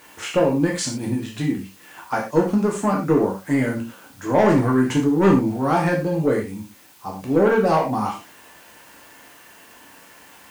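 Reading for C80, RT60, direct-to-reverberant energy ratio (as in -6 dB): 12.0 dB, no single decay rate, -1.5 dB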